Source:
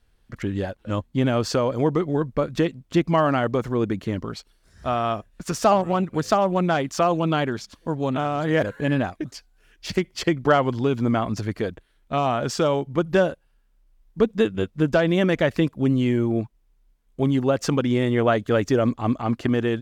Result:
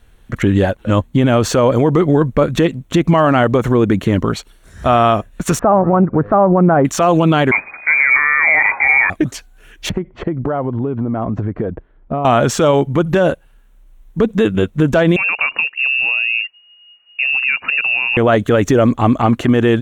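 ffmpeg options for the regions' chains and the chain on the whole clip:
ffmpeg -i in.wav -filter_complex "[0:a]asettb=1/sr,asplit=3[link_01][link_02][link_03];[link_01]atrim=end=5.594[link_04];[link_02]atrim=start=5.59:end=6.85,asetpts=PTS-STARTPTS,afade=type=in:duration=0.004:curve=qsin,afade=type=out:start_time=1.256:duration=0.004:curve=qsin,lowpass=frequency=1500:width=0.5412,lowpass=frequency=1500:width=1.3066,aemphasis=mode=reproduction:type=75fm[link_05];[link_03]atrim=start=6.846[link_06];[link_04][link_05]acrossfade=duration=0.004:curve1=hsin:curve2=qsin[link_07];[link_07][link_06]acrossfade=duration=0.004:curve1=qsin:curve2=hsin,asettb=1/sr,asplit=3[link_08][link_09][link_10];[link_08]atrim=end=7.514[link_11];[link_09]atrim=start=7.51:end=9.1,asetpts=PTS-STARTPTS,afade=type=in:duration=0.004:curve=qsin,afade=type=out:start_time=1.586:duration=0.004:curve=qsin,aeval=exprs='val(0)+0.5*0.0398*sgn(val(0))':channel_layout=same,agate=range=-33dB:threshold=-26dB:ratio=3:release=100:detection=peak,lowpass=frequency=2100:width_type=q:width=0.5098,lowpass=frequency=2100:width_type=q:width=0.6013,lowpass=frequency=2100:width_type=q:width=0.9,lowpass=frequency=2100:width_type=q:width=2.563,afreqshift=-2500[link_12];[link_10]atrim=start=9.096[link_13];[link_11][link_12]acrossfade=duration=0.004:curve1=hsin:curve2=qsin[link_14];[link_14][link_13]acrossfade=duration=0.004:curve1=qsin:curve2=hsin,asettb=1/sr,asplit=3[link_15][link_16][link_17];[link_15]atrim=end=9.894[link_18];[link_16]atrim=start=9.89:end=12.25,asetpts=PTS-STARTPTS,afade=type=in:duration=0.004:curve=qsin,afade=type=out:start_time=2.356:duration=0.004:curve=qsin,lowpass=1000,acompressor=threshold=-29dB:ratio=12:attack=3.2:release=140:knee=1:detection=peak[link_19];[link_17]atrim=start=12.246[link_20];[link_18][link_19]acrossfade=duration=0.004:curve1=hsin:curve2=qsin[link_21];[link_21][link_20]acrossfade=duration=0.004:curve1=qsin:curve2=hsin,asettb=1/sr,asplit=3[link_22][link_23][link_24];[link_22]atrim=end=15.164[link_25];[link_23]atrim=start=15.16:end=18.17,asetpts=PTS-STARTPTS,afade=type=in:duration=0.004:curve=qsin,afade=type=out:start_time=3.006:duration=0.004:curve=qsin,acompressor=threshold=-29dB:ratio=4:attack=3.2:release=140:knee=1:detection=peak,lowpass=frequency=2500:width_type=q:width=0.5098,lowpass=frequency=2500:width_type=q:width=0.6013,lowpass=frequency=2500:width_type=q:width=0.9,lowpass=frequency=2500:width_type=q:width=2.563,afreqshift=-2900[link_26];[link_24]atrim=start=18.166[link_27];[link_25][link_26]acrossfade=duration=0.004:curve1=hsin:curve2=qsin[link_28];[link_28][link_27]acrossfade=duration=0.004:curve1=qsin:curve2=hsin,deesser=0.6,equalizer=frequency=4900:width_type=o:width=0.26:gain=-14.5,alimiter=level_in=17dB:limit=-1dB:release=50:level=0:latency=1,volume=-2.5dB" out.wav

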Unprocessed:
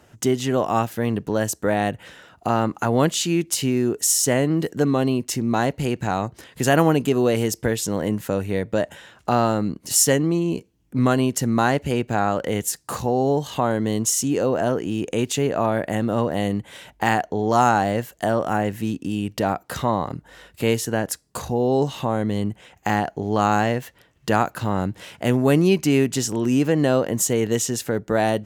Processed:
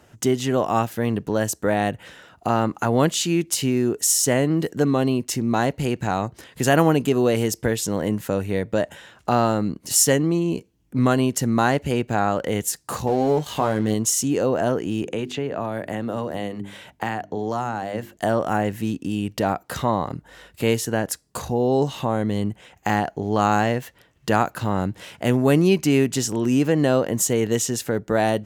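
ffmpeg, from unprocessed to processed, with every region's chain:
ffmpeg -i in.wav -filter_complex "[0:a]asettb=1/sr,asplit=3[link_01][link_02][link_03];[link_01]atrim=end=13.074[link_04];[link_02]atrim=start=13.07:end=13.94,asetpts=PTS-STARTPTS,afade=type=in:duration=0.004:curve=qsin,afade=type=out:start_time=0.866:duration=0.004:curve=qsin,asplit=2[link_05][link_06];[link_06]adelay=19,volume=-7.5dB[link_07];[link_05][link_07]amix=inputs=2:normalize=0,atrim=end_sample=38367,acompressor=mode=upward:threshold=-22dB:ratio=2.5:attack=3.2:release=140:knee=2.83:detection=peak,aeval=exprs='sgn(val(0))*max(abs(val(0))-0.0133,0)':channel_layout=same[link_08];[link_03]atrim=start=13.936[link_09];[link_04][link_08]acrossfade=duration=0.004:curve1=hsin:curve2=qsin[link_10];[link_10][link_09]acrossfade=duration=0.004:curve1=qsin:curve2=hsin,asettb=1/sr,asplit=3[link_11][link_12][link_13];[link_11]atrim=end=15.024[link_14];[link_12]atrim=start=15.02:end=18.17,asetpts=PTS-STARTPTS,afade=type=in:duration=0.004:curve=qsin,afade=type=out:start_time=3.146:duration=0.004:curve=qsin,bandreject=frequency=50:width_type=h:width=6,bandreject=frequency=100:width_type=h:width=6,bandreject=frequency=150:width_type=h:width=6,bandreject=frequency=200:width_type=h:width=6,bandreject=frequency=250:width_type=h:width=6,bandreject=frequency=300:width_type=h:width=6,bandreject=frequency=350:width_type=h:width=6,bandreject=frequency=400:width_type=h:width=6,acrossover=split=230|4000[link_15][link_16][link_17];[link_15]acompressor=threshold=-33dB:ratio=4[link_18];[link_16]acompressor=threshold=-25dB:ratio=4[link_19];[link_17]acompressor=threshold=-52dB:ratio=4[link_20];[link_18][link_19][link_20]amix=inputs=3:normalize=0[link_21];[link_13]atrim=start=18.166[link_22];[link_14][link_21]acrossfade=duration=0.004:curve1=hsin:curve2=qsin[link_23];[link_23][link_22]acrossfade=duration=0.004:curve1=qsin:curve2=hsin" out.wav

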